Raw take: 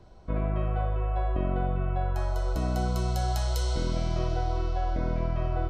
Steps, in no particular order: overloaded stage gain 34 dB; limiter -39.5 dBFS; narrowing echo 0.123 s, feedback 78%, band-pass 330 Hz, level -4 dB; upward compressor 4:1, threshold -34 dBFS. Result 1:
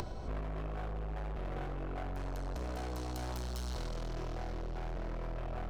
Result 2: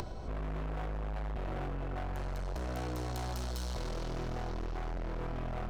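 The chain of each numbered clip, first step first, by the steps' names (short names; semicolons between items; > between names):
overloaded stage > narrowing echo > limiter > upward compressor; narrowing echo > overloaded stage > limiter > upward compressor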